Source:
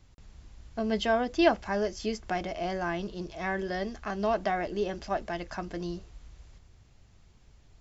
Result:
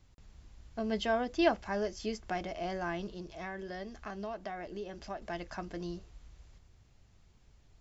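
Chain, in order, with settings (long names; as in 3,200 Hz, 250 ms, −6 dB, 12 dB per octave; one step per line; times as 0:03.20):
0:03.14–0:05.22: downward compressor 3 to 1, threshold −35 dBFS, peak gain reduction 9 dB
level −4.5 dB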